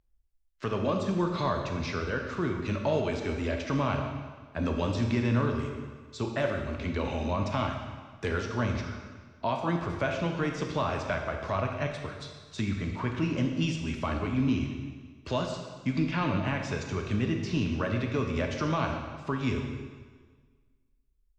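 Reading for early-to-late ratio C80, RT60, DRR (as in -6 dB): 6.0 dB, 1.6 s, 2.5 dB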